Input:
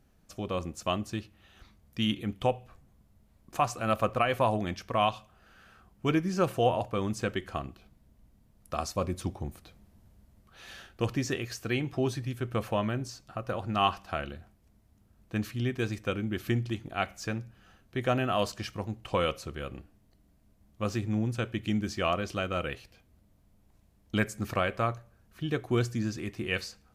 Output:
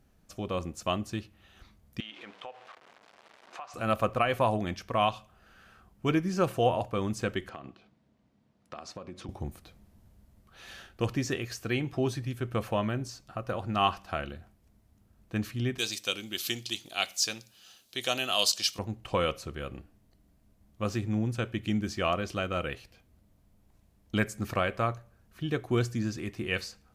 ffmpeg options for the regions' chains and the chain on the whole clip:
ffmpeg -i in.wav -filter_complex "[0:a]asettb=1/sr,asplit=3[link_01][link_02][link_03];[link_01]atrim=end=2.004[link_04];[link_02]atrim=start=2:end=3.74,asetpts=PTS-STARTPTS,afade=type=in:duration=0.004:curve=qsin,afade=type=out:start_time=1.736:duration=0.004:curve=qsin,aeval=exprs='val(0)+0.5*0.00891*sgn(val(0))':channel_layout=same,highpass=690,lowpass=3600,acompressor=threshold=-40dB:ratio=4:attack=3.2:release=140:knee=1:detection=peak[link_05];[link_03]atrim=start=3.736[link_06];[link_04][link_05]acrossfade=duration=0.004:curve1=hsin:curve2=qsin[link_07];[link_07][link_06]acrossfade=duration=0.004:curve1=qsin:curve2=hsin,asettb=1/sr,asplit=3[link_08][link_09][link_10];[link_08]atrim=end=7.494[link_11];[link_09]atrim=start=7.49:end=9.29,asetpts=PTS-STARTPTS,afade=type=in:duration=0.004:curve=qsin,afade=type=out:start_time=1.796:duration=0.004:curve=qsin,highpass=160,lowpass=4700,acompressor=threshold=-37dB:ratio=12:attack=3.2:release=140:knee=1:detection=peak[link_12];[link_10]atrim=start=9.286[link_13];[link_11][link_12]acrossfade=duration=0.004:curve1=hsin:curve2=qsin[link_14];[link_14][link_13]acrossfade=duration=0.004:curve1=qsin:curve2=hsin,asettb=1/sr,asplit=3[link_15][link_16][link_17];[link_15]atrim=end=15.784[link_18];[link_16]atrim=start=15.78:end=18.79,asetpts=PTS-STARTPTS,afade=type=in:duration=0.004:curve=qsin,afade=type=out:start_time=3.006:duration=0.004:curve=qsin,highpass=frequency=700:poles=1,highshelf=frequency=2600:width_type=q:width=1.5:gain=13.5[link_19];[link_17]atrim=start=18.786[link_20];[link_18][link_19]acrossfade=duration=0.004:curve1=hsin:curve2=qsin[link_21];[link_21][link_20]acrossfade=duration=0.004:curve1=qsin:curve2=hsin" out.wav

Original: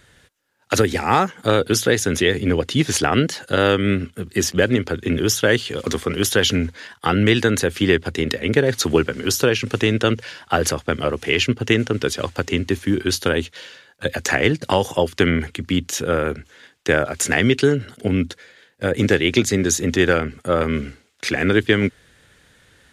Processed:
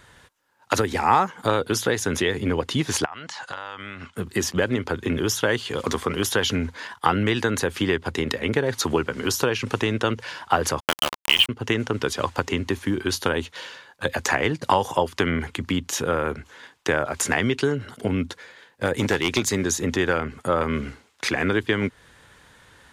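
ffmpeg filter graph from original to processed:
ffmpeg -i in.wav -filter_complex "[0:a]asettb=1/sr,asplit=3[link_01][link_02][link_03];[link_01]atrim=end=3.054[link_04];[link_02]atrim=start=3.05:end=4.16,asetpts=PTS-STARTPTS,afade=type=in:duration=0.004:curve=qsin,afade=type=out:start_time=1.106:duration=0.004:curve=qsin,lowpass=frequency=7800:width=0.5412,lowpass=frequency=7800:width=1.3066,lowshelf=frequency=590:width_type=q:width=1.5:gain=-10.5,acompressor=threshold=-32dB:ratio=16:attack=3.2:release=140:knee=1:detection=peak[link_05];[link_03]atrim=start=4.156[link_06];[link_04][link_05]acrossfade=duration=0.004:curve1=hsin:curve2=qsin[link_07];[link_07][link_06]acrossfade=duration=0.004:curve1=qsin:curve2=hsin,asettb=1/sr,asplit=3[link_08][link_09][link_10];[link_08]atrim=end=10.804[link_11];[link_09]atrim=start=10.8:end=11.49,asetpts=PTS-STARTPTS,afade=type=in:duration=0.004:curve=qsin,afade=type=out:start_time=0.686:duration=0.004:curve=qsin,lowpass=frequency=3100:width_type=q:width=9.6,bandreject=frequency=430:width=5.6,aeval=exprs='val(0)*gte(abs(val(0)),0.237)':channel_layout=same[link_12];[link_10]atrim=start=11.486[link_13];[link_11][link_12]acrossfade=duration=0.004:curve1=hsin:curve2=qsin[link_14];[link_14][link_13]acrossfade=duration=0.004:curve1=qsin:curve2=hsin,asettb=1/sr,asplit=3[link_15][link_16][link_17];[link_15]atrim=end=18.854[link_18];[link_16]atrim=start=18.85:end=19.64,asetpts=PTS-STARTPTS,afade=type=in:duration=0.004:curve=qsin,afade=type=out:start_time=0.786:duration=0.004:curve=qsin,highshelf=frequency=3300:gain=6.5,aeval=exprs='clip(val(0),-1,0.316)':channel_layout=same[link_19];[link_17]atrim=start=19.636[link_20];[link_18][link_19]acrossfade=duration=0.004:curve1=hsin:curve2=qsin[link_21];[link_21][link_20]acrossfade=duration=0.004:curve1=qsin:curve2=hsin,acompressor=threshold=-24dB:ratio=2,equalizer=frequency=980:width=2.1:gain=10.5" out.wav

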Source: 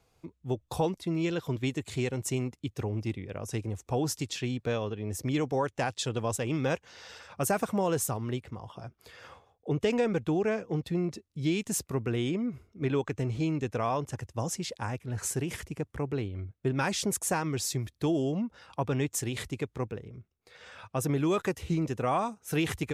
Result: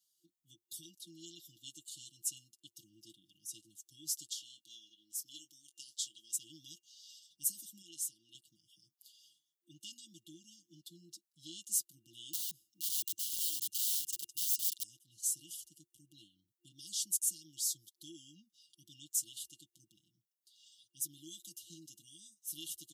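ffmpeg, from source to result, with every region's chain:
ffmpeg -i in.wav -filter_complex "[0:a]asettb=1/sr,asplit=3[link_01][link_02][link_03];[link_01]atrim=end=4.284[link_04];[link_02]atrim=start=4.28:end=6.33,asetpts=PTS-STARTPTS,afade=type=in:duration=0.004:curve=qsin,afade=type=out:start_time=2.046:duration=0.004:curve=qsin,highpass=frequency=630:poles=1,asplit=2[link_05][link_06];[link_06]adelay=22,volume=-11dB[link_07];[link_05][link_07]amix=inputs=2:normalize=0,atrim=end_sample=90405[link_08];[link_03]atrim=start=6.326[link_09];[link_04][link_08]acrossfade=duration=0.004:curve1=hsin:curve2=qsin[link_10];[link_10][link_09]acrossfade=duration=0.004:curve1=qsin:curve2=hsin,asettb=1/sr,asplit=3[link_11][link_12][link_13];[link_11]atrim=end=7.824[link_14];[link_12]atrim=start=7.82:end=8.35,asetpts=PTS-STARTPTS,afade=type=in:duration=0.004:curve=qsin,afade=type=out:start_time=0.526:duration=0.004:curve=qsin,lowpass=11000,bass=frequency=250:gain=-10,treble=frequency=4000:gain=-4[link_15];[link_13]atrim=start=8.346[link_16];[link_14][link_15]acrossfade=duration=0.004:curve1=hsin:curve2=qsin[link_17];[link_17][link_16]acrossfade=duration=0.004:curve1=qsin:curve2=hsin,asettb=1/sr,asplit=3[link_18][link_19][link_20];[link_18]atrim=end=12.334[link_21];[link_19]atrim=start=12.33:end=14.83,asetpts=PTS-STARTPTS,afade=type=in:duration=0.004:curve=qsin,afade=type=out:start_time=2.496:duration=0.004:curve=qsin,acontrast=74,aeval=exprs='(mod(21.1*val(0)+1,2)-1)/21.1':channel_layout=same[link_22];[link_20]atrim=start=14.826[link_23];[link_21][link_22]acrossfade=duration=0.004:curve1=hsin:curve2=qsin[link_24];[link_24][link_23]acrossfade=duration=0.004:curve1=qsin:curve2=hsin,afftfilt=real='re*(1-between(b*sr/4096,350,2800))':imag='im*(1-between(b*sr/4096,350,2800))':win_size=4096:overlap=0.75,aderivative,aecho=1:1:6:0.76,volume=-3dB" out.wav

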